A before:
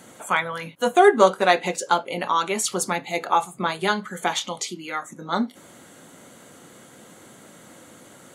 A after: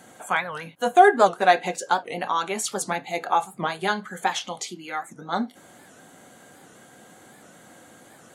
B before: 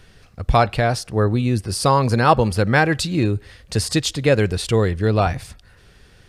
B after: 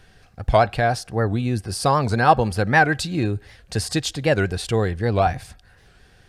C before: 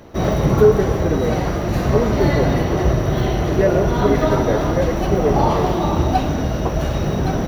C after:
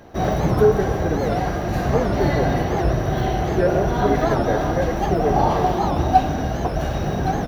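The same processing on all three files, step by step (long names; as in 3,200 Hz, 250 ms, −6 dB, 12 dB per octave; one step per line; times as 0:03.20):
hollow resonant body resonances 750/1,600 Hz, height 9 dB, ringing for 35 ms
wow of a warped record 78 rpm, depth 160 cents
level −3.5 dB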